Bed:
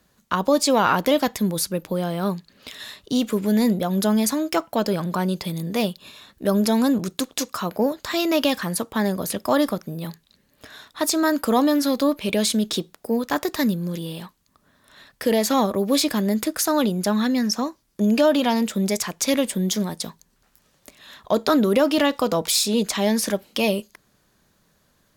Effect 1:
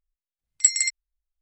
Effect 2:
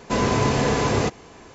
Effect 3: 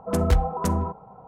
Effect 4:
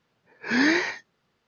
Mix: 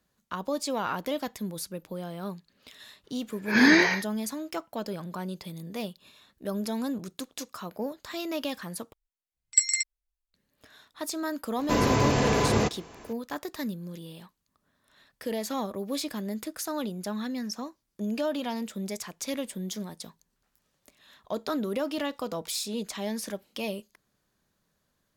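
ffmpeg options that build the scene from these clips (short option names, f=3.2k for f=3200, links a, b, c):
-filter_complex "[0:a]volume=-12dB[a];[4:a]acontrast=83[b];[a]asplit=2[c][d];[c]atrim=end=8.934[e];[1:a]atrim=end=1.41,asetpts=PTS-STARTPTS,volume=-3.5dB[f];[d]atrim=start=10.336[g];[b]atrim=end=1.47,asetpts=PTS-STARTPTS,volume=-4dB,afade=t=in:d=0.004:c=hsin,afade=t=out:st=1.466:d=0.004:c=hsin,adelay=3040[h];[2:a]atrim=end=1.54,asetpts=PTS-STARTPTS,volume=-3dB,afade=t=in:d=0.004:c=hsin,afade=t=out:st=1.536:d=0.004:c=hsin,adelay=11590[i];[e][f]acrossfade=d=0.004:c1=hsin:c2=hsin[j];[j][g]acrossfade=d=0.004:c1=hsin:c2=hsin[k];[k][h][i]amix=inputs=3:normalize=0"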